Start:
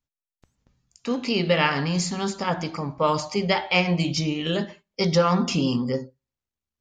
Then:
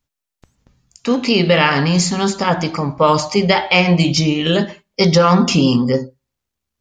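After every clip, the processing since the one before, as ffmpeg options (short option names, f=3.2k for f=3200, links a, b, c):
-af "alimiter=level_in=10.5dB:limit=-1dB:release=50:level=0:latency=1,volume=-1dB"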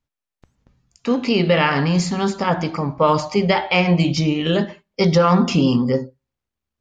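-af "highshelf=f=4.3k:g=-10,volume=-2.5dB"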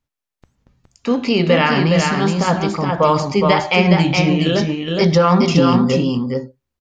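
-af "aecho=1:1:416:0.631,volume=1.5dB"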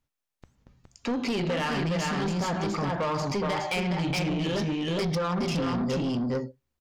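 -af "acompressor=threshold=-18dB:ratio=5,asoftclip=type=tanh:threshold=-22.5dB,volume=-1.5dB"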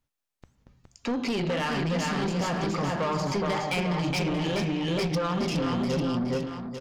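-af "aecho=1:1:846:0.376"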